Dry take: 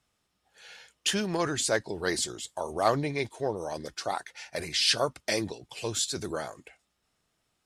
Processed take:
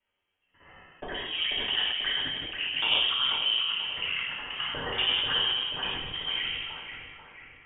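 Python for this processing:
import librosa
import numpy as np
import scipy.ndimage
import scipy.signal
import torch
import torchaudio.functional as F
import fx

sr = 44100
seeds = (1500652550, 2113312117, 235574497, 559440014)

p1 = fx.local_reverse(x, sr, ms=60.0)
p2 = fx.env_lowpass_down(p1, sr, base_hz=2000.0, full_db=-25.0)
p3 = scipy.signal.sosfilt(scipy.signal.butter(4, 220.0, 'highpass', fs=sr, output='sos'), p2)
p4 = 10.0 ** (-19.0 / 20.0) * (np.abs((p3 / 10.0 ** (-19.0 / 20.0) + 3.0) % 4.0 - 2.0) - 1.0)
p5 = fx.rider(p4, sr, range_db=3, speed_s=2.0)
p6 = fx.env_flanger(p5, sr, rest_ms=11.0, full_db=-25.0)
p7 = p6 + fx.echo_split(p6, sr, split_hz=980.0, low_ms=156, high_ms=488, feedback_pct=52, wet_db=-6.5, dry=0)
p8 = fx.rev_double_slope(p7, sr, seeds[0], early_s=0.97, late_s=3.0, knee_db=-21, drr_db=-3.0)
p9 = fx.freq_invert(p8, sr, carrier_hz=3500)
y = fx.sustainer(p9, sr, db_per_s=30.0)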